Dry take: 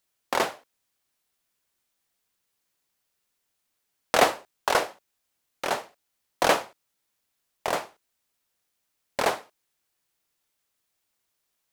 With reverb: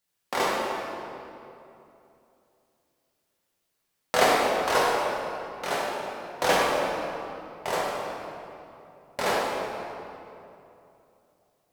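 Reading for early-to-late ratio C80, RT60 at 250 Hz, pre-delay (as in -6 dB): -0.5 dB, 3.2 s, 3 ms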